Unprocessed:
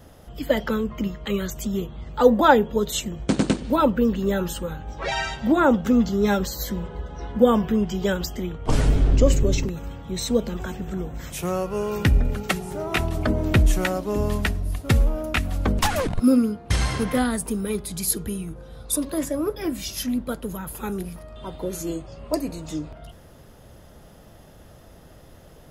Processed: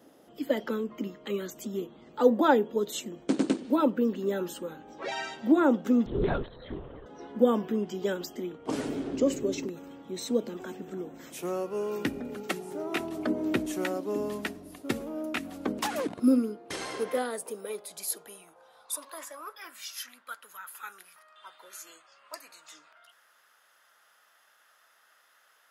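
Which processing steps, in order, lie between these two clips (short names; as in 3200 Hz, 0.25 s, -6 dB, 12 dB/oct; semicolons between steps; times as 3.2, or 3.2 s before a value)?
high-pass sweep 290 Hz -> 1400 Hz, 16.22–19.89; 6.06–7.06 LPC vocoder at 8 kHz whisper; gain -9 dB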